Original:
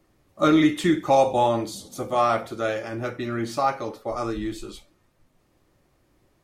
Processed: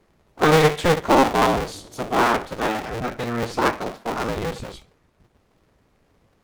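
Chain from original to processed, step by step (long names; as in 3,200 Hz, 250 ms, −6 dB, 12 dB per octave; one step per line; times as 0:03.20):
sub-harmonics by changed cycles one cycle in 2, inverted
high-shelf EQ 7,000 Hz −8 dB
level +2.5 dB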